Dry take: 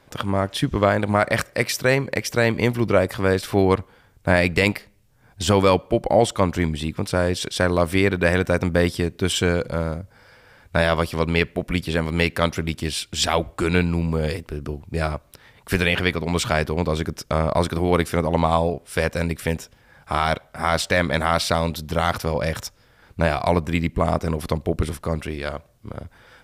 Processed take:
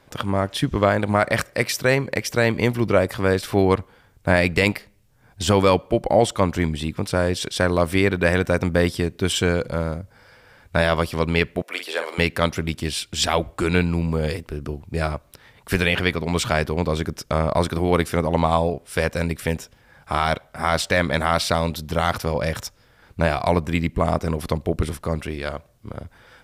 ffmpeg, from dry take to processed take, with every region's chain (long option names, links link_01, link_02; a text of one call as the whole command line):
ffmpeg -i in.wav -filter_complex "[0:a]asettb=1/sr,asplit=3[link_01][link_02][link_03];[link_01]atrim=end=11.624[link_04];[link_02]atrim=start=11.62:end=12.18,asetpts=PTS-STARTPTS,afade=type=in:duration=0.004:curve=qsin,afade=type=out:start_time=0.556:duration=0.004:curve=qsin,highpass=frequency=450:width=0.5412,highpass=frequency=450:width=1.3066,asplit=2[link_05][link_06];[link_06]adelay=48,volume=-7.5dB[link_07];[link_05][link_07]amix=inputs=2:normalize=0,atrim=end_sample=24696[link_08];[link_03]atrim=start=12.176[link_09];[link_04][link_08]acrossfade=duration=0.004:curve1=hsin:curve2=qsin[link_10];[link_10][link_09]acrossfade=duration=0.004:curve1=qsin:curve2=hsin" out.wav